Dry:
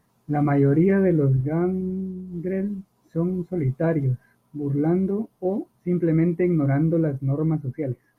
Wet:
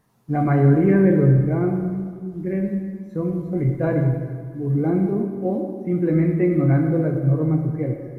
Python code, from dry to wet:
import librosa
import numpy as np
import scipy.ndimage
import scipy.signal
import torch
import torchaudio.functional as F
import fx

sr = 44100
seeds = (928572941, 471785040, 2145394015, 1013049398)

y = fx.rev_plate(x, sr, seeds[0], rt60_s=1.8, hf_ratio=0.75, predelay_ms=0, drr_db=2.5)